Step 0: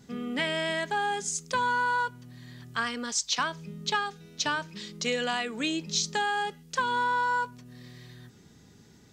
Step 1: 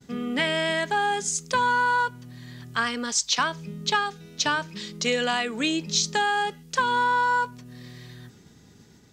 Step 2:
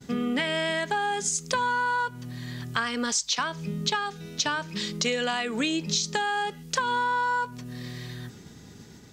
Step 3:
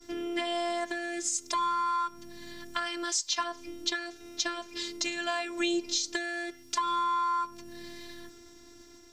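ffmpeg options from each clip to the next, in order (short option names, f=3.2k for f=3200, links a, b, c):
-af "agate=range=-33dB:threshold=-52dB:ratio=3:detection=peak,volume=4.5dB"
-af "acompressor=threshold=-30dB:ratio=5,volume=5.5dB"
-af "afftfilt=real='hypot(re,im)*cos(PI*b)':imag='0':win_size=512:overlap=0.75,aeval=exprs='val(0)+0.000891*sin(2*PI*5600*n/s)':c=same"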